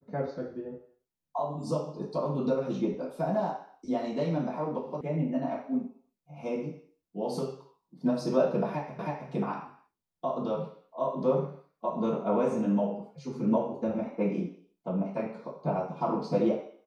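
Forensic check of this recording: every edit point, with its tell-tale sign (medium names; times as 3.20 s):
5.01 s: sound stops dead
8.99 s: repeat of the last 0.32 s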